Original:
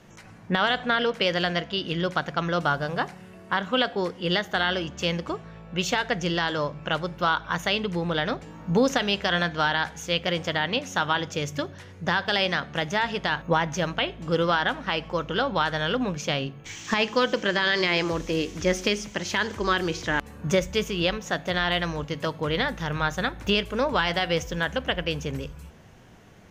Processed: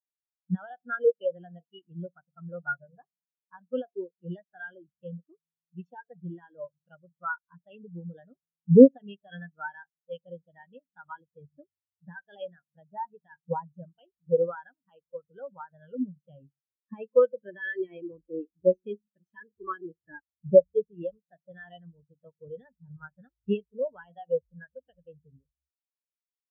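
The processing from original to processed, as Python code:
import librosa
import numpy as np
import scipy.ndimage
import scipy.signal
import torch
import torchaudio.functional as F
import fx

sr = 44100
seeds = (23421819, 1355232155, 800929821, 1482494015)

y = fx.notch(x, sr, hz=2100.0, q=7.2)
y = fx.spectral_expand(y, sr, expansion=4.0)
y = y * 10.0 ** (8.5 / 20.0)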